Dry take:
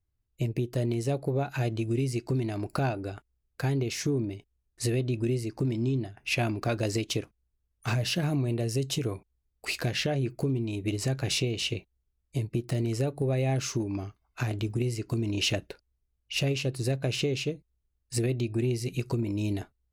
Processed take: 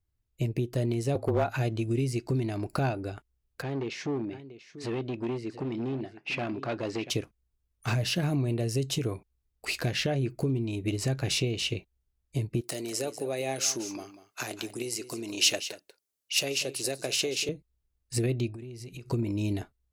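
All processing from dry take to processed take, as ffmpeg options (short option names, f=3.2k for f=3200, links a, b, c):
-filter_complex "[0:a]asettb=1/sr,asplit=3[a][b][c];[a]atrim=end=1.154[d];[b]atrim=start=1.15:end=1.56,asetpts=PTS-STARTPTS,afade=t=in:d=0.004:c=qsin,afade=t=out:st=0.406:d=0.004:c=qsin,equalizer=f=830:w=0.65:g=8,afreqshift=-27,volume=20dB,asoftclip=hard,volume=-20dB[e];[c]atrim=start=1.556[f];[d][e]acrossfade=d=0.004:c1=hsin:c2=qsin[g];[g][f]acrossfade=d=0.004:c1=qsin:c2=hsin,asettb=1/sr,asplit=3[h][i][j];[h]atrim=end=3.624[k];[i]atrim=start=3.62:end=7.1,asetpts=PTS-STARTPTS,afade=t=in:d=0.004:c=qsin,afade=t=out:st=3.476:d=0.004:c=qsin,aecho=1:1:689:0.168,atrim=end_sample=153468,asoftclip=type=hard:threshold=-25.5dB,highpass=190,lowpass=3.6k[l];[j]atrim=start=7.096[m];[k][l]acrossfade=d=0.004:c1=hsin:c2=qsin[n];[n][m]acrossfade=d=0.004:c1=qsin:c2=hsin,asettb=1/sr,asplit=3[o][p][q];[o]atrim=end=12.614[r];[p]atrim=start=12.61:end=17.49,asetpts=PTS-STARTPTS,afade=t=in:d=0.004:c=qsin,afade=t=out:st=4.876:d=0.004:c=qsin,highpass=150,bass=f=250:g=-14,treble=f=4k:g=10,aecho=1:1:191:0.211,atrim=end_sample=215208[s];[q]atrim=start=17.486[t];[r][s]acrossfade=d=0.004:c1=hsin:c2=qsin[u];[u][t]acrossfade=d=0.004:c1=qsin:c2=hsin,asettb=1/sr,asplit=3[v][w][x];[v]atrim=end=18.494[y];[w]atrim=start=18.49:end=19.1,asetpts=PTS-STARTPTS,afade=t=in:d=0.004:c=qsin,afade=t=out:st=0.606:d=0.004:c=qsin,highshelf=f=11k:g=-5,acompressor=threshold=-38dB:ratio=16:attack=3.2:release=140:knee=1:detection=peak[z];[x]atrim=start=19.096[aa];[y][z]acrossfade=d=0.004:c1=hsin:c2=qsin[ab];[ab][aa]acrossfade=d=0.004:c1=qsin:c2=hsin"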